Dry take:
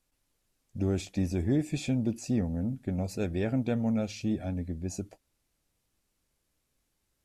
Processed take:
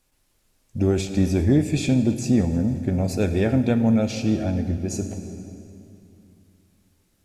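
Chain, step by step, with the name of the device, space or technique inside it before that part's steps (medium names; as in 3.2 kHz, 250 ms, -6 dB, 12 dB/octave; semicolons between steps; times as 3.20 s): compressed reverb return (on a send at -4 dB: reverberation RT60 2.7 s, pre-delay 5 ms + compression, threshold -30 dBFS, peak gain reduction 8.5 dB); on the sum: trim +8.5 dB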